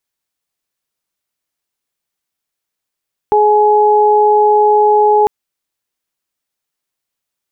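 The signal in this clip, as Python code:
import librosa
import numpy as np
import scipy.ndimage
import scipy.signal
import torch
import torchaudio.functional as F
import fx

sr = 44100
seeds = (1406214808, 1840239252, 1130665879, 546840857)

y = fx.additive_steady(sr, length_s=1.95, hz=421.0, level_db=-10, upper_db=(1.0,))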